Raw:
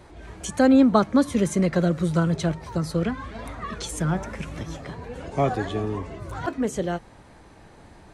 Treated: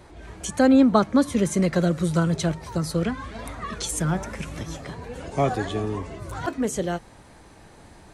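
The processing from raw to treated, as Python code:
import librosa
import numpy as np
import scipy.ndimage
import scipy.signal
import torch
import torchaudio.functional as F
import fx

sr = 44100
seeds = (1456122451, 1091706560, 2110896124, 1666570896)

y = fx.high_shelf(x, sr, hz=5200.0, db=fx.steps((0.0, 2.5), (1.53, 8.0)))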